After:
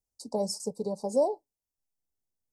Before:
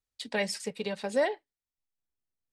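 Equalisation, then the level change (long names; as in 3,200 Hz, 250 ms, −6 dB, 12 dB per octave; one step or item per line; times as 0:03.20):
inverse Chebyshev band-stop filter 1,400–3,500 Hz, stop band 40 dB
+2.0 dB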